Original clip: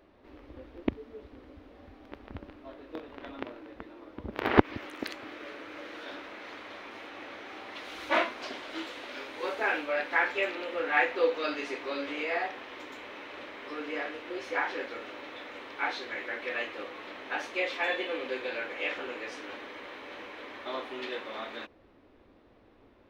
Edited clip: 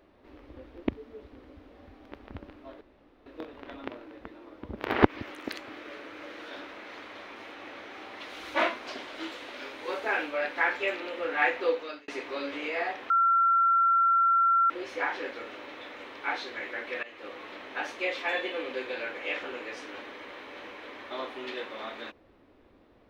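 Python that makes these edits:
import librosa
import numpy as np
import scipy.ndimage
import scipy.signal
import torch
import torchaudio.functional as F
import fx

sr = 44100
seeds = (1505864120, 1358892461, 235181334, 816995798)

y = fx.edit(x, sr, fx.insert_room_tone(at_s=2.81, length_s=0.45),
    fx.fade_out_span(start_s=11.2, length_s=0.43),
    fx.bleep(start_s=12.65, length_s=1.6, hz=1360.0, db=-19.5),
    fx.fade_in_from(start_s=16.58, length_s=0.33, floor_db=-18.0), tone=tone)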